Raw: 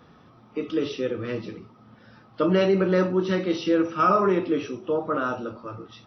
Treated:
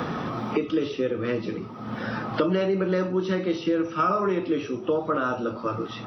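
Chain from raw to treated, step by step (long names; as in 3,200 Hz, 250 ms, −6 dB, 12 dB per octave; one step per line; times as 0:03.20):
multiband upward and downward compressor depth 100%
level −2 dB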